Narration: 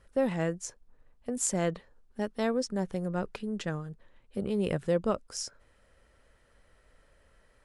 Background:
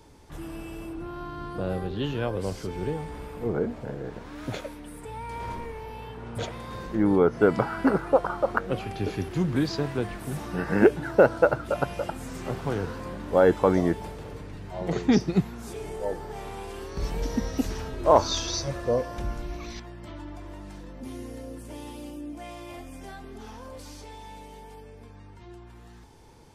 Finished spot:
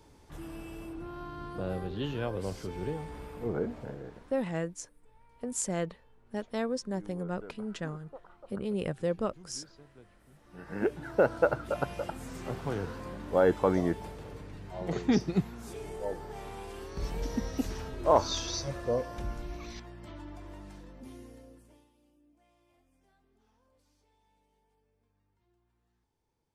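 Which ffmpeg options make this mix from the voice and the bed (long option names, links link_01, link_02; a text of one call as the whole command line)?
ffmpeg -i stem1.wav -i stem2.wav -filter_complex "[0:a]adelay=4150,volume=-3dB[link_01];[1:a]volume=17.5dB,afade=type=out:start_time=3.82:duration=0.64:silence=0.0749894,afade=type=in:start_time=10.43:duration=1.02:silence=0.0749894,afade=type=out:start_time=20.57:duration=1.32:silence=0.0668344[link_02];[link_01][link_02]amix=inputs=2:normalize=0" out.wav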